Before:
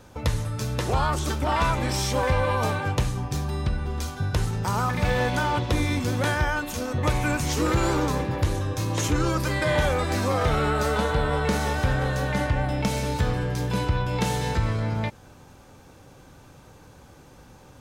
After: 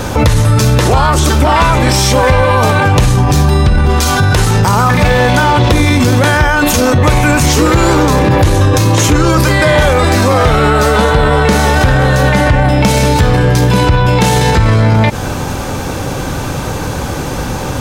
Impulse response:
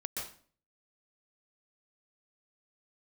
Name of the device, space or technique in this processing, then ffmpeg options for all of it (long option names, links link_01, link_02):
loud club master: -filter_complex "[0:a]asettb=1/sr,asplit=3[link_01][link_02][link_03];[link_01]atrim=end=3.894[link_04];[link_02]atrim=start=3.89:end=4.62,asetpts=PTS-STARTPTS,afade=type=in:duration=0.004:curve=qsin,afade=type=out:start_time=0.726:duration=0.004:curve=qsin,lowshelf=frequency=340:gain=-6[link_05];[link_03]atrim=start=4.616[link_06];[link_04][link_05]acrossfade=duration=0.004:curve1=hsin:curve2=qsin[link_07];[link_07][link_06]acrossfade=duration=0.004:curve1=qsin:curve2=hsin,acompressor=threshold=-28dB:ratio=2,asoftclip=type=hard:threshold=-20.5dB,alimiter=level_in=32.5dB:limit=-1dB:release=50:level=0:latency=1,volume=-1dB"